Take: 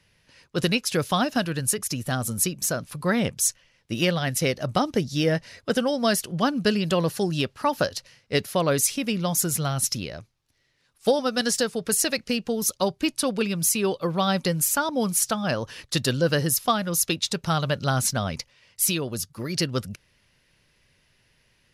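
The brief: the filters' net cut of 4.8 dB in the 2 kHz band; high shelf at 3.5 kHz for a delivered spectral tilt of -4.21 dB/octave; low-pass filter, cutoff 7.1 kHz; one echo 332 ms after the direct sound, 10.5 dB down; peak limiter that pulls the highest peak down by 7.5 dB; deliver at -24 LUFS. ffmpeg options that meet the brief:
-af "lowpass=7100,equalizer=f=2000:t=o:g=-8,highshelf=f=3500:g=3.5,alimiter=limit=0.141:level=0:latency=1,aecho=1:1:332:0.299,volume=1.5"

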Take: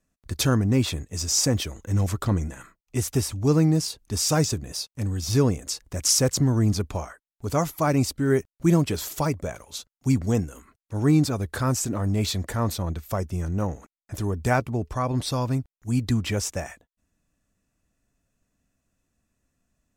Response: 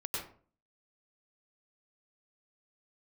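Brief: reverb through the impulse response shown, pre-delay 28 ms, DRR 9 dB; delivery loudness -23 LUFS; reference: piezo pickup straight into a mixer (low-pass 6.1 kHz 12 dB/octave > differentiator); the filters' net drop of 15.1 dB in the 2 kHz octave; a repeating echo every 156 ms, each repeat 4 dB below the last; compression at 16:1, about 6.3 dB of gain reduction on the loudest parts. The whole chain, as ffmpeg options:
-filter_complex "[0:a]equalizer=f=2000:t=o:g=-4.5,acompressor=threshold=0.0891:ratio=16,aecho=1:1:156|312|468|624|780|936|1092|1248|1404:0.631|0.398|0.25|0.158|0.0994|0.0626|0.0394|0.0249|0.0157,asplit=2[s0][s1];[1:a]atrim=start_sample=2205,adelay=28[s2];[s1][s2]afir=irnorm=-1:irlink=0,volume=0.266[s3];[s0][s3]amix=inputs=2:normalize=0,lowpass=6100,aderivative,volume=4.73"

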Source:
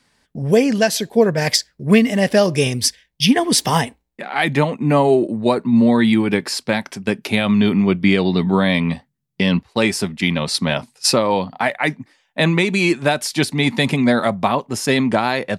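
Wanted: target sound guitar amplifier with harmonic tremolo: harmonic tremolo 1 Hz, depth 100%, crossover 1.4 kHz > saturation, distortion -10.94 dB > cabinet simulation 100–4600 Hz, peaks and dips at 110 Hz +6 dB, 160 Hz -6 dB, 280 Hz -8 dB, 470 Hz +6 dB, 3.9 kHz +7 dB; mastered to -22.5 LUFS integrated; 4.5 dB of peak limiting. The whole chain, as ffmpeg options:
-filter_complex "[0:a]alimiter=limit=0.447:level=0:latency=1,acrossover=split=1400[s0][s1];[s0]aeval=exprs='val(0)*(1-1/2+1/2*cos(2*PI*1*n/s))':c=same[s2];[s1]aeval=exprs='val(0)*(1-1/2-1/2*cos(2*PI*1*n/s))':c=same[s3];[s2][s3]amix=inputs=2:normalize=0,asoftclip=threshold=0.133,highpass=100,equalizer=f=110:t=q:w=4:g=6,equalizer=f=160:t=q:w=4:g=-6,equalizer=f=280:t=q:w=4:g=-8,equalizer=f=470:t=q:w=4:g=6,equalizer=f=3900:t=q:w=4:g=7,lowpass=f=4600:w=0.5412,lowpass=f=4600:w=1.3066,volume=1.68"

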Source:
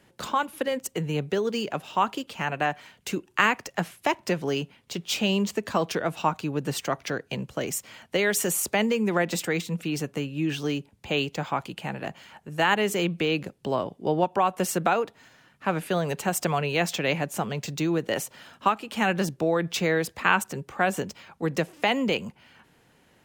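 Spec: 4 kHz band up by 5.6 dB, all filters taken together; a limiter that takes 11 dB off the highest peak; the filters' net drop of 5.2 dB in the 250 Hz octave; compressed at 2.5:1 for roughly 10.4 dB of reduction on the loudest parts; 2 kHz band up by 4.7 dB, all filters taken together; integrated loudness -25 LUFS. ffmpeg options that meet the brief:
-af "equalizer=f=250:t=o:g=-8,equalizer=f=2000:t=o:g=4.5,equalizer=f=4000:t=o:g=6,acompressor=threshold=0.0398:ratio=2.5,volume=2.37,alimiter=limit=0.251:level=0:latency=1"

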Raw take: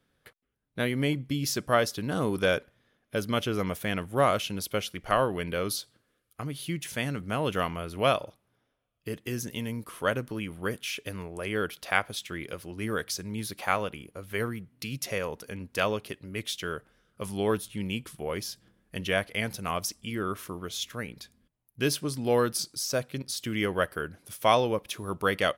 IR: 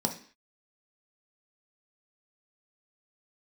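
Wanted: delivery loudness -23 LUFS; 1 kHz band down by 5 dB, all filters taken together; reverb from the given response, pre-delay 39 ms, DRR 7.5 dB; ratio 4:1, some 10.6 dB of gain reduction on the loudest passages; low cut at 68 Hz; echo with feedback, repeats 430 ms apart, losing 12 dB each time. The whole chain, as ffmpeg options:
-filter_complex "[0:a]highpass=68,equalizer=f=1000:t=o:g=-7,acompressor=threshold=0.02:ratio=4,aecho=1:1:430|860|1290:0.251|0.0628|0.0157,asplit=2[s0][s1];[1:a]atrim=start_sample=2205,adelay=39[s2];[s1][s2]afir=irnorm=-1:irlink=0,volume=0.2[s3];[s0][s3]amix=inputs=2:normalize=0,volume=4.73"

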